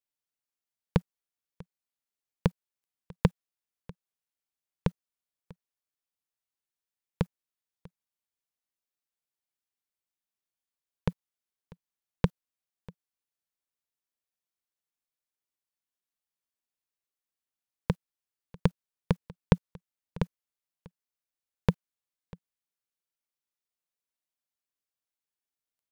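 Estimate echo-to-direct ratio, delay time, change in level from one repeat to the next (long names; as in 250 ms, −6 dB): −22.5 dB, 644 ms, repeats not evenly spaced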